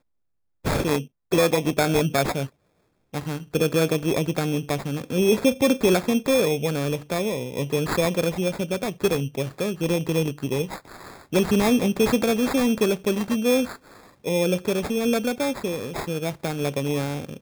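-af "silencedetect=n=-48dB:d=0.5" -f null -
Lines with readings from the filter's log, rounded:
silence_start: 0.00
silence_end: 0.64 | silence_duration: 0.64
silence_start: 2.49
silence_end: 3.13 | silence_duration: 0.64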